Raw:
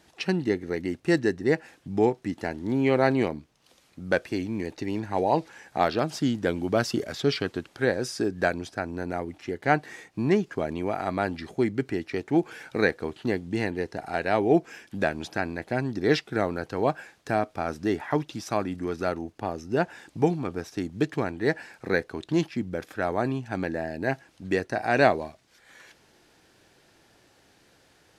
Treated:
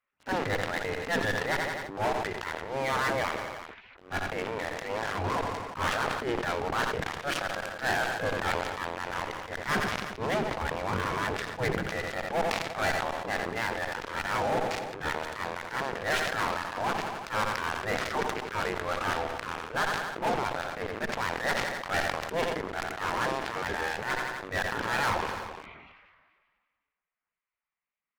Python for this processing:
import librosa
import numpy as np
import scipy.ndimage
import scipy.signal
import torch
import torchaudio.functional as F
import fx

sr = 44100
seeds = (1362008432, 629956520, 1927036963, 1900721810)

y = scipy.signal.sosfilt(scipy.signal.butter(4, 1800.0, 'lowpass', fs=sr, output='sos'), x)
y = fx.spec_gate(y, sr, threshold_db=-15, keep='weak')
y = fx.low_shelf(y, sr, hz=160.0, db=10.0, at=(9.68, 11.94))
y = fx.leveller(y, sr, passes=5)
y = fx.transient(y, sr, attack_db=-12, sustain_db=3)
y = fx.rider(y, sr, range_db=4, speed_s=2.0)
y = fx.tube_stage(y, sr, drive_db=23.0, bias=0.55)
y = fx.echo_feedback(y, sr, ms=87, feedback_pct=56, wet_db=-20.0)
y = fx.sustainer(y, sr, db_per_s=34.0)